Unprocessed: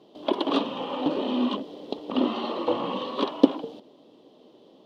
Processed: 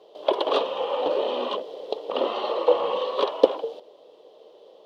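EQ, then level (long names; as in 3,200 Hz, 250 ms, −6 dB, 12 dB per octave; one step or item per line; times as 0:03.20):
parametric band 62 Hz −8.5 dB 1.4 octaves
low shelf with overshoot 350 Hz −10.5 dB, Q 3
+1.5 dB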